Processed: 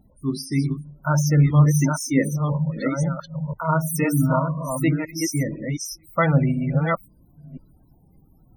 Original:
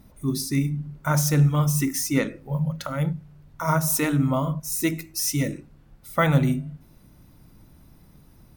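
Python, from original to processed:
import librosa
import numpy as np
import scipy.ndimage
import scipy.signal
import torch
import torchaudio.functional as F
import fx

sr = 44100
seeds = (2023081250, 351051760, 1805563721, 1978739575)

y = fx.reverse_delay(x, sr, ms=505, wet_db=-3.0)
y = fx.spec_topn(y, sr, count=32)
y = fx.noise_reduce_blind(y, sr, reduce_db=6)
y = y * librosa.db_to_amplitude(1.5)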